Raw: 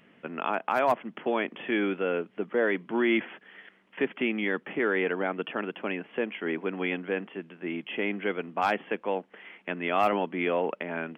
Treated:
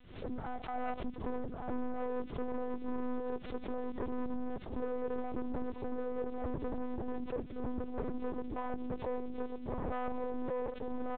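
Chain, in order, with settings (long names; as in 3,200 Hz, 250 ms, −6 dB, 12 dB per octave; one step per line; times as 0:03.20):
rippled gain that drifts along the octave scale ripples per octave 1.3, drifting −0.68 Hz, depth 16 dB
spectral tilt −4.5 dB per octave
single-tap delay 1,148 ms −5 dB
downward compressor 16 to 1, threshold −18 dBFS, peak gain reduction 7.5 dB
gain into a clipping stage and back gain 22 dB
low-pass filter 1,100 Hz 24 dB per octave
surface crackle 420 per second −37 dBFS
tube saturation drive 24 dB, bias 0.65
one-pitch LPC vocoder at 8 kHz 250 Hz
background raised ahead of every attack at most 91 dB per second
level −6.5 dB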